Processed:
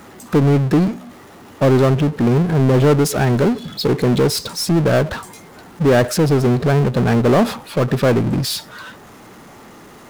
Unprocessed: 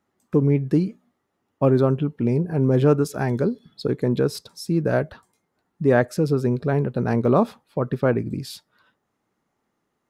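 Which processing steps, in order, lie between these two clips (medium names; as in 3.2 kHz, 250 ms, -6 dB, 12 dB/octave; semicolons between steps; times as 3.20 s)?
power-law waveshaper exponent 0.5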